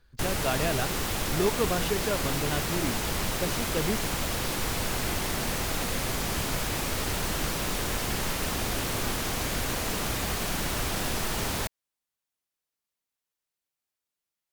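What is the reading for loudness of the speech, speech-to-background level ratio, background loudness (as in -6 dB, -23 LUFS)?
-32.0 LUFS, -3.0 dB, -29.0 LUFS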